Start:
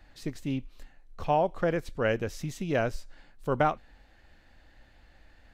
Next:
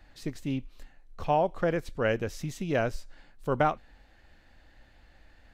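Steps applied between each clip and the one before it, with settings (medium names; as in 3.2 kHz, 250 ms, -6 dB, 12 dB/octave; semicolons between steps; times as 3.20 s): no audible change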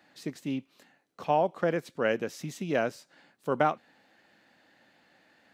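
high-pass 160 Hz 24 dB/octave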